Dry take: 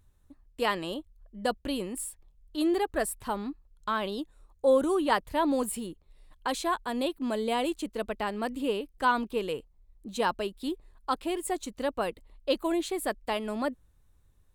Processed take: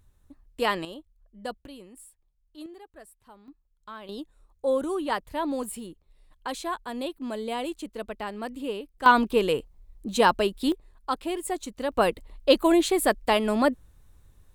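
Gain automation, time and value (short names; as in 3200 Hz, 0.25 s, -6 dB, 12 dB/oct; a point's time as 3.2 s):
+2.5 dB
from 0.85 s -6 dB
from 1.66 s -13 dB
from 2.66 s -19.5 dB
from 3.48 s -12 dB
from 4.09 s -2.5 dB
from 9.06 s +8 dB
from 10.72 s +1 dB
from 11.92 s +8.5 dB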